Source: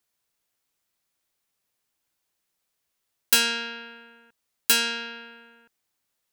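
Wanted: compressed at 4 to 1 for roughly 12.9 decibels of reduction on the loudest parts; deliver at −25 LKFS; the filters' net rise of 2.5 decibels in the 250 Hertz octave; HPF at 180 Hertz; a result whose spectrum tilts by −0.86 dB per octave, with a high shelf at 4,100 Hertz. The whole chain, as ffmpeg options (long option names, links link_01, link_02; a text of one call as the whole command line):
ffmpeg -i in.wav -af "highpass=180,equalizer=frequency=250:width_type=o:gain=4,highshelf=frequency=4100:gain=-7,acompressor=threshold=-35dB:ratio=4,volume=14dB" out.wav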